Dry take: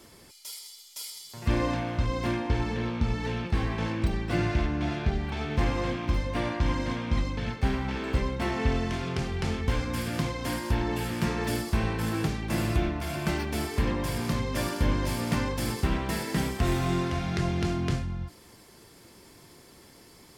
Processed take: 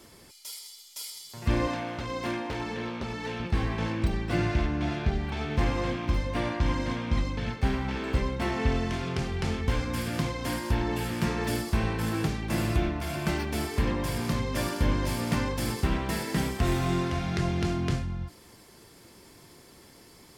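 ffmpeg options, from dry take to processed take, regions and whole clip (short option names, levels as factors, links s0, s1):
-filter_complex "[0:a]asettb=1/sr,asplit=3[s0][s1][s2];[s0]atrim=end=1.674[s3];[s1]atrim=start=1.67:end=3.4,asetpts=PTS-STARTPTS,afade=t=in:d=0.004:c=qsin,afade=t=out:st=1.726:d=0.004:c=qsin,aeval=exprs='0.112*(abs(mod(val(0)/0.112+3,4)-2)-1)':c=same,highpass=f=280:p=1[s4];[s2]atrim=start=3.396[s5];[s3][s4]acrossfade=d=0.004:c1=hsin:c2=qsin[s6];[s6][s5]acrossfade=d=0.004:c1=qsin:c2=hsin"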